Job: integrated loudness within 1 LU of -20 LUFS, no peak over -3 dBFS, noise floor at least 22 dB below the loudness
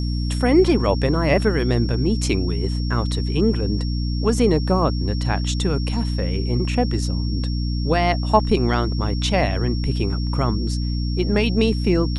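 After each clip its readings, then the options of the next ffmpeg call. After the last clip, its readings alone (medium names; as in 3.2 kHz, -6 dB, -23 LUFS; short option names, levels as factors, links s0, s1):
hum 60 Hz; highest harmonic 300 Hz; hum level -20 dBFS; steady tone 5.5 kHz; tone level -35 dBFS; loudness -21.0 LUFS; peak level -2.0 dBFS; loudness target -20.0 LUFS
-> -af "bandreject=f=60:t=h:w=4,bandreject=f=120:t=h:w=4,bandreject=f=180:t=h:w=4,bandreject=f=240:t=h:w=4,bandreject=f=300:t=h:w=4"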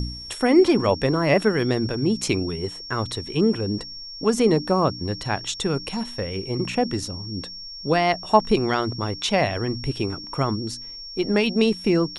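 hum not found; steady tone 5.5 kHz; tone level -35 dBFS
-> -af "bandreject=f=5500:w=30"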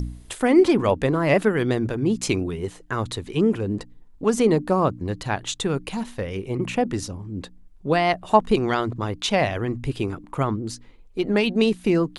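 steady tone not found; loudness -23.0 LUFS; peak level -3.5 dBFS; loudness target -20.0 LUFS
-> -af "volume=1.41,alimiter=limit=0.708:level=0:latency=1"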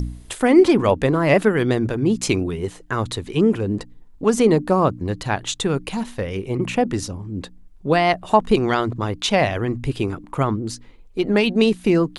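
loudness -20.0 LUFS; peak level -3.0 dBFS; noise floor -45 dBFS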